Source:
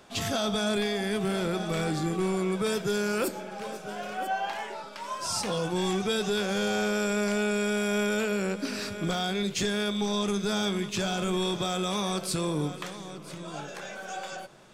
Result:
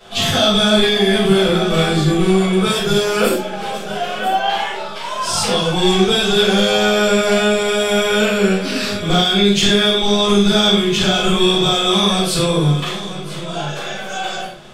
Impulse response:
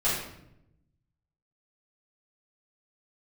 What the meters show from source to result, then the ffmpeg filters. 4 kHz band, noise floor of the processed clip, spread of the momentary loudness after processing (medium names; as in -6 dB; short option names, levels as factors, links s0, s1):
+18.0 dB, -27 dBFS, 12 LU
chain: -filter_complex "[0:a]equalizer=f=3300:w=2.4:g=8[s0];[1:a]atrim=start_sample=2205,afade=t=out:st=0.18:d=0.01,atrim=end_sample=8379[s1];[s0][s1]afir=irnorm=-1:irlink=0,volume=1.19"